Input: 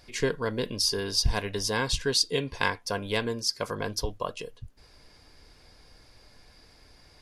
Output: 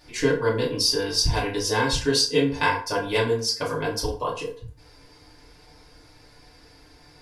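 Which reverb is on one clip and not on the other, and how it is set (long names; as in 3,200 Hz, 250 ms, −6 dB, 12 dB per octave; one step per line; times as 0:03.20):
feedback delay network reverb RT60 0.45 s, low-frequency decay 0.85×, high-frequency decay 0.65×, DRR −6 dB
level −2 dB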